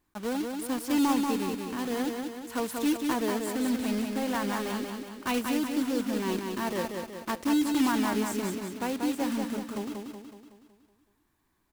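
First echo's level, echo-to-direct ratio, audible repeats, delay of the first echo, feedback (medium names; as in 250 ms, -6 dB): -4.5 dB, -3.0 dB, 6, 186 ms, 52%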